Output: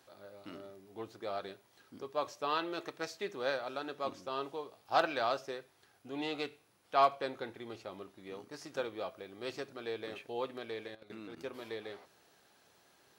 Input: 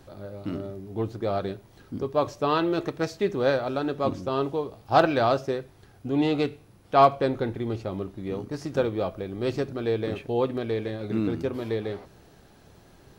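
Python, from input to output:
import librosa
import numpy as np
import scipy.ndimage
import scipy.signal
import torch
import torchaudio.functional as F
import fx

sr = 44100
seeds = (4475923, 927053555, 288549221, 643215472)

y = fx.highpass(x, sr, hz=1100.0, slope=6)
y = fx.level_steps(y, sr, step_db=14, at=(10.87, 11.36), fade=0.02)
y = y * librosa.db_to_amplitude(-5.0)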